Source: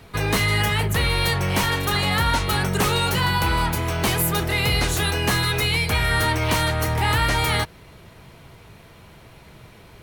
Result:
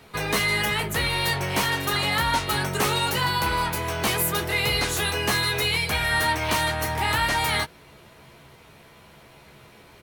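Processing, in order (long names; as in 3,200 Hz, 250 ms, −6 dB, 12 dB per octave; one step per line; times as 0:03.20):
low-shelf EQ 140 Hz −10.5 dB
double-tracking delay 14 ms −6.5 dB
level −2 dB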